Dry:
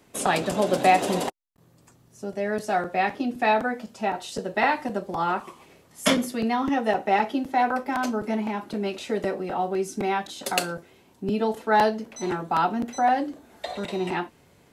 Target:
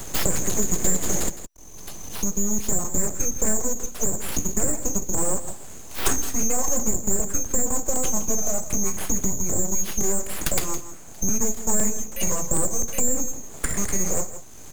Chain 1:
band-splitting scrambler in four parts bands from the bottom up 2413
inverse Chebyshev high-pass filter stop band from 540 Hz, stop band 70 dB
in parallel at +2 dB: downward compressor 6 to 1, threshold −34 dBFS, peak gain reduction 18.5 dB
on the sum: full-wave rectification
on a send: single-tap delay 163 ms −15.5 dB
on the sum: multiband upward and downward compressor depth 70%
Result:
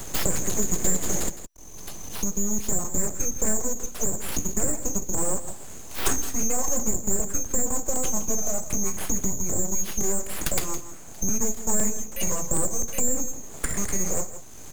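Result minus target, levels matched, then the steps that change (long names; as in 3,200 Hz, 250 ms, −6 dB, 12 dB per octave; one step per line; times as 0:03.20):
downward compressor: peak gain reduction +6 dB
change: downward compressor 6 to 1, threshold −26.5 dBFS, peak gain reduction 12.5 dB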